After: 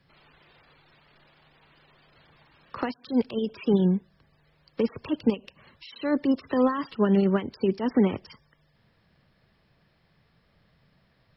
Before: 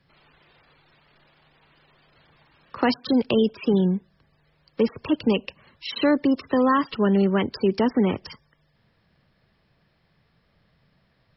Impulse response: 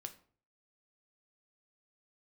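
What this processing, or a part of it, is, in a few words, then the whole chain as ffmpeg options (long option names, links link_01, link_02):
de-esser from a sidechain: -filter_complex "[0:a]asplit=2[link_01][link_02];[link_02]highpass=4100,apad=whole_len=501411[link_03];[link_01][link_03]sidechaincompress=threshold=-47dB:ratio=12:attack=3.8:release=82"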